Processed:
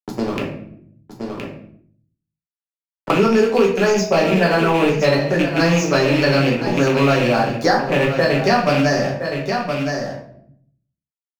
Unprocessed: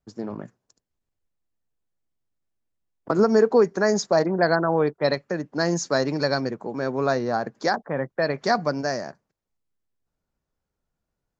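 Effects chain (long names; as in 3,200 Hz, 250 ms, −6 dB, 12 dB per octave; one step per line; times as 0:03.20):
loose part that buzzes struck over −30 dBFS, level −18 dBFS
in parallel at +0.5 dB: speech leveller
on the sum: dead-zone distortion −35 dBFS
single-tap delay 1,018 ms −13 dB
rectangular room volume 61 cubic metres, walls mixed, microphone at 1.1 metres
multiband upward and downward compressor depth 70%
level −5 dB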